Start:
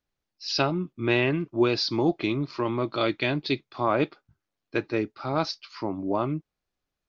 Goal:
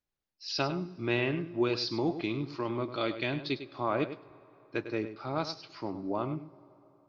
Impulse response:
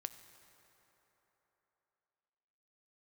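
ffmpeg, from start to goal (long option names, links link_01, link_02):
-filter_complex "[0:a]asplit=2[link_01][link_02];[link_02]equalizer=frequency=460:width_type=o:width=0.77:gain=2.5[link_03];[1:a]atrim=start_sample=2205,adelay=101[link_04];[link_03][link_04]afir=irnorm=-1:irlink=0,volume=-8.5dB[link_05];[link_01][link_05]amix=inputs=2:normalize=0,volume=-6.5dB"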